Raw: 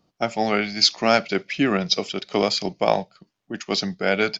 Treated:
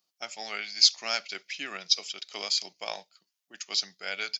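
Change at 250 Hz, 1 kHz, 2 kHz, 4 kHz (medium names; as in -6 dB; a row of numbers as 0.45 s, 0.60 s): -27.5 dB, -16.0 dB, -9.5 dB, -2.5 dB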